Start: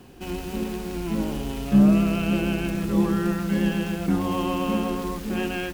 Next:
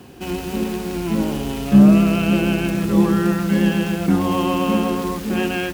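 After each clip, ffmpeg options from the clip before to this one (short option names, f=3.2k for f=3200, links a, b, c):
-af "highpass=65,volume=6dB"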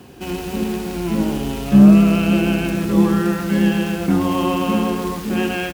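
-af "aecho=1:1:79:0.299"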